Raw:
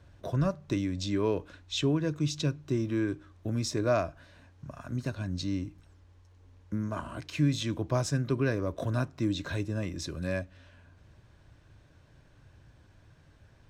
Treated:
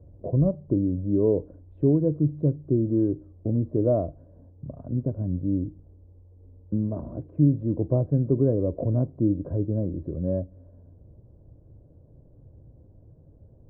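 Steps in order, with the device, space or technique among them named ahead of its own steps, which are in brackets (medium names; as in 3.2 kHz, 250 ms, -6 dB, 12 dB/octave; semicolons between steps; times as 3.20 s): under water (low-pass 580 Hz 24 dB/octave; peaking EQ 500 Hz +4 dB 0.26 oct); trim +6.5 dB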